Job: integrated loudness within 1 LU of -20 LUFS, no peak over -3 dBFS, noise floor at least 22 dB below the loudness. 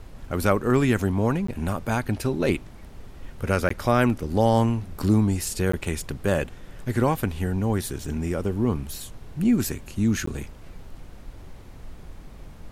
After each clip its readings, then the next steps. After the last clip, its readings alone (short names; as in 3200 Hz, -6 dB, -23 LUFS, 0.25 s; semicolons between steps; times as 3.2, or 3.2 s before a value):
dropouts 4; longest dropout 14 ms; noise floor -44 dBFS; noise floor target -47 dBFS; loudness -25.0 LUFS; peak -6.5 dBFS; loudness target -20.0 LUFS
-> interpolate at 1.47/3.69/5.72/10.26, 14 ms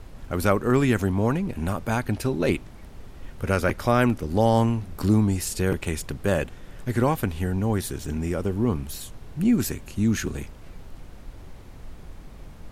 dropouts 0; noise floor -44 dBFS; noise floor target -47 dBFS
-> noise print and reduce 6 dB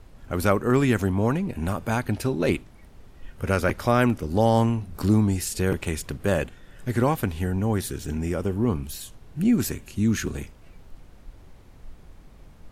noise floor -49 dBFS; loudness -24.5 LUFS; peak -6.5 dBFS; loudness target -20.0 LUFS
-> gain +4.5 dB; limiter -3 dBFS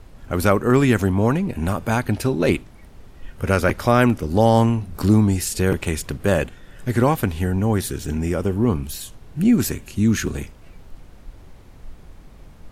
loudness -20.5 LUFS; peak -3.0 dBFS; noise floor -45 dBFS